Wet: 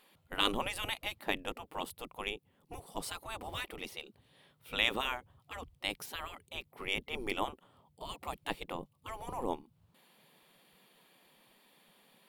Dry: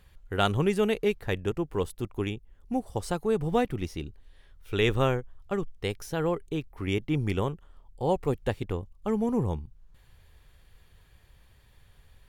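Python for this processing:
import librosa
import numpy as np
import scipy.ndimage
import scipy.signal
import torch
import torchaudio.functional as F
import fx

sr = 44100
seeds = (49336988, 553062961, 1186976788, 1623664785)

y = fx.graphic_eq_15(x, sr, hz=(100, 400, 1600, 6300), db=(10, -4, -8, -9))
y = fx.spec_gate(y, sr, threshold_db=-20, keep='weak')
y = y * librosa.db_to_amplitude(4.0)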